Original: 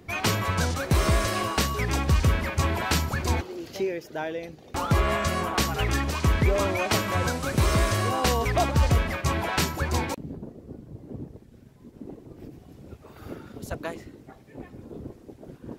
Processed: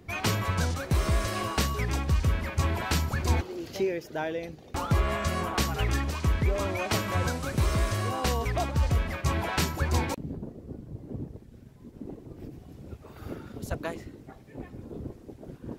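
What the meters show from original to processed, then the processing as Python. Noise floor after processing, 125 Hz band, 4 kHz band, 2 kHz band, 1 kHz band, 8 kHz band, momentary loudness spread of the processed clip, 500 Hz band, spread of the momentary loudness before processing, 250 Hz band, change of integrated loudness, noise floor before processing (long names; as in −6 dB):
−51 dBFS, −2.0 dB, −4.5 dB, −4.5 dB, −4.5 dB, −4.5 dB, 17 LU, −4.0 dB, 20 LU, −3.0 dB, −3.5 dB, −51 dBFS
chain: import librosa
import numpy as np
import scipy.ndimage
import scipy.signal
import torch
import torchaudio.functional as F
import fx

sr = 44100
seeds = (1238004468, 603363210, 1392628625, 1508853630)

y = fx.low_shelf(x, sr, hz=130.0, db=5.0)
y = fx.rider(y, sr, range_db=4, speed_s=0.5)
y = y * 10.0 ** (-4.5 / 20.0)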